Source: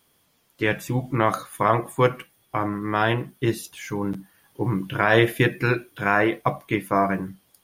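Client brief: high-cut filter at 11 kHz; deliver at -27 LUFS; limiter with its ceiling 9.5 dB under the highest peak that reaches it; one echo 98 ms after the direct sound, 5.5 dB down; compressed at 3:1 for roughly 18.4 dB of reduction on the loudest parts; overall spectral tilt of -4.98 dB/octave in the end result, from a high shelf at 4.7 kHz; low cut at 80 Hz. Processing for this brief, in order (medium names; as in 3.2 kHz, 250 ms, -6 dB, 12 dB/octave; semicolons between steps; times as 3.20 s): high-pass 80 Hz; low-pass 11 kHz; treble shelf 4.7 kHz +6 dB; compression 3:1, threshold -39 dBFS; peak limiter -28.5 dBFS; delay 98 ms -5.5 dB; trim +13.5 dB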